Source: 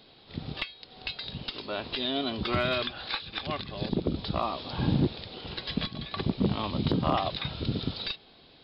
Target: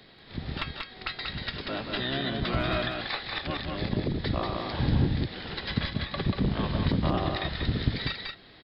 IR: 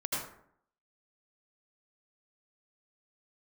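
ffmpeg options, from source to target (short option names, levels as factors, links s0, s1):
-filter_complex "[0:a]acrossover=split=190[s0][s1];[s1]acompressor=threshold=0.0251:ratio=2[s2];[s0][s2]amix=inputs=2:normalize=0,asplit=2[s3][s4];[s4]asetrate=22050,aresample=44100,atempo=2,volume=0.794[s5];[s3][s5]amix=inputs=2:normalize=0,aecho=1:1:187:0.631"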